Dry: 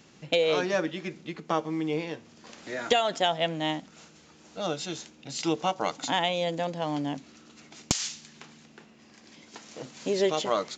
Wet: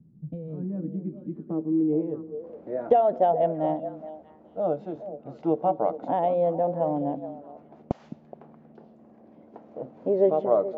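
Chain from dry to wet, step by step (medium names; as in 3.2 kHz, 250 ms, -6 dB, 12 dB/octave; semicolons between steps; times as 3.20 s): repeats whose band climbs or falls 211 ms, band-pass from 210 Hz, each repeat 1.4 oct, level -8 dB; low-pass sweep 170 Hz -> 640 Hz, 0.49–2.95 s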